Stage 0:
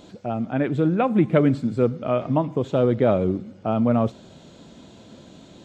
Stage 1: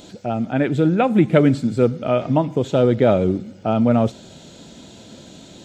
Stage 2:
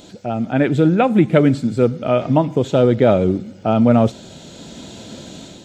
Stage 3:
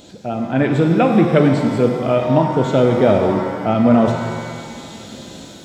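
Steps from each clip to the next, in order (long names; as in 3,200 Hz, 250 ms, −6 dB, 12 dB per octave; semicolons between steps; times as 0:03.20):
high-shelf EQ 3,900 Hz +9.5 dB; notch filter 1,100 Hz, Q 6.9; level +3.5 dB
automatic gain control gain up to 6.5 dB
reverb with rising layers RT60 1.8 s, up +7 semitones, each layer −8 dB, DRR 4 dB; level −1 dB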